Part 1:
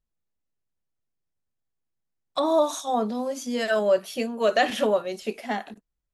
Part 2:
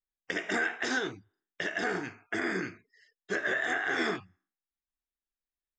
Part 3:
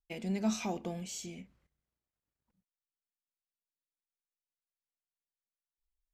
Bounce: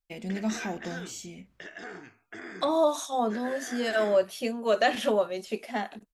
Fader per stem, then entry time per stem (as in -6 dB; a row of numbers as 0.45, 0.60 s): -2.5, -10.5, +1.5 dB; 0.25, 0.00, 0.00 s